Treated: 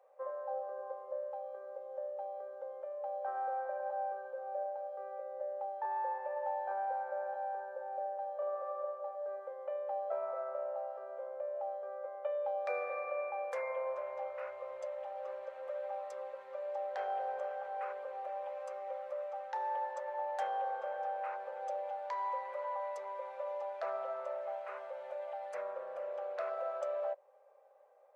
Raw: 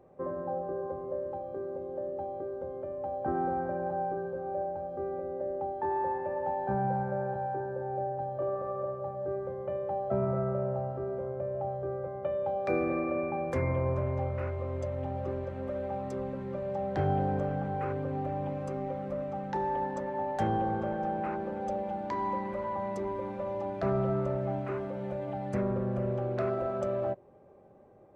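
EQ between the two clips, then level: elliptic high-pass 510 Hz, stop band 40 dB; -3.5 dB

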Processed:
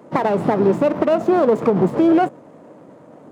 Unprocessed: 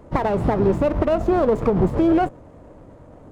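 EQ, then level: high-pass 160 Hz 24 dB/octave; +3.0 dB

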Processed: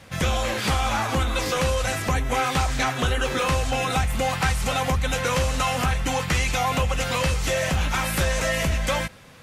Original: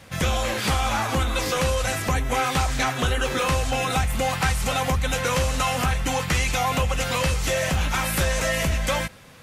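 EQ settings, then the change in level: treble shelf 10 kHz -4.5 dB; 0.0 dB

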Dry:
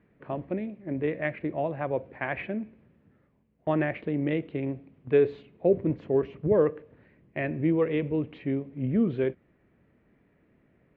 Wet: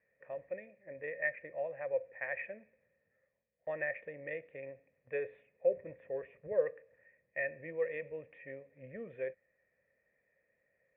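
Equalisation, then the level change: cascade formant filter e; peaking EQ 320 Hz -13 dB 1.2 oct; bass shelf 430 Hz -12 dB; +8.5 dB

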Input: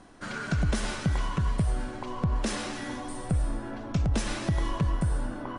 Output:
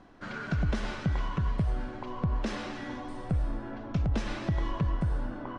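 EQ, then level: distance through air 110 m; treble shelf 8.9 kHz -7.5 dB; -2.0 dB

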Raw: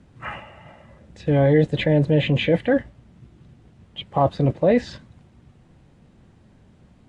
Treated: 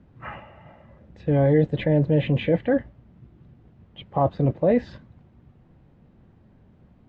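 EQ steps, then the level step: distance through air 120 m; treble shelf 2.2 kHz -8 dB; -1.5 dB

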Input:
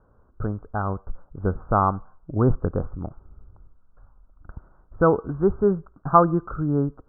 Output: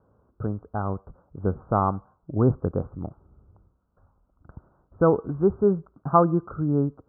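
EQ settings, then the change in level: high-pass 82 Hz 12 dB/octave; Bessel low-pass 960 Hz, order 2; 0.0 dB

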